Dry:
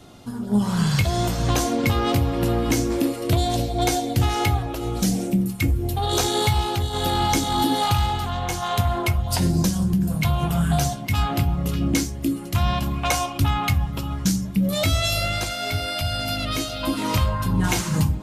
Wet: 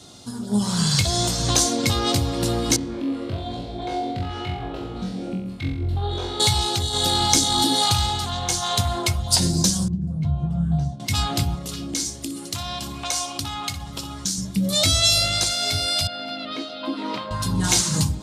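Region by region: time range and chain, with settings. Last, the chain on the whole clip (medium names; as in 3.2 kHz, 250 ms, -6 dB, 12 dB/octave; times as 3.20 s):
2.76–6.40 s: compression, threshold -23 dBFS + distance through air 500 m + flutter echo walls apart 3.8 m, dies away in 0.64 s
9.88–11.00 s: band-pass filter 120 Hz, Q 0.73 + doubling 13 ms -6.5 dB
11.55–14.38 s: bass shelf 150 Hz -9 dB + compression 3:1, threshold -27 dBFS + flutter echo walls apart 10.4 m, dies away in 0.29 s
16.07–17.31 s: high-pass 220 Hz 24 dB/octave + distance through air 410 m
whole clip: high-pass 55 Hz; high-order bell 5.8 kHz +11.5 dB; trim -1.5 dB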